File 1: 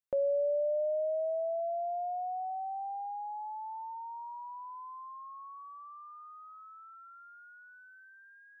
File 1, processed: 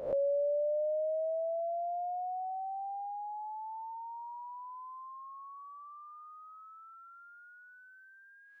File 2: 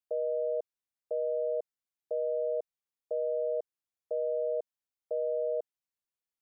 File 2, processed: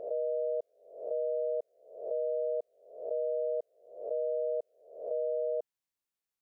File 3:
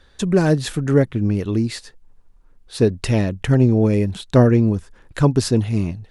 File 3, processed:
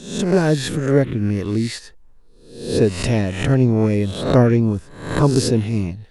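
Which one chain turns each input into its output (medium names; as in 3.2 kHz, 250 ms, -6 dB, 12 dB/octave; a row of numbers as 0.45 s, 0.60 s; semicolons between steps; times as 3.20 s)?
reverse spectral sustain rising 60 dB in 0.62 s; trim -1 dB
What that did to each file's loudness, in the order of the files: -1.0 LU, -1.0 LU, 0.0 LU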